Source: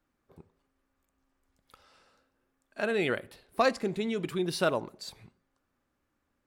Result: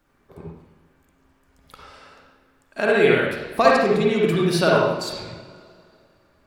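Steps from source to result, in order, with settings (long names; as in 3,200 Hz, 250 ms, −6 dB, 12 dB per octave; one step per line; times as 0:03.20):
in parallel at +2 dB: downward compressor, threshold −38 dBFS, peak gain reduction 17 dB
on the sum: convolution reverb, pre-delay 47 ms, DRR −4 dB
level +4 dB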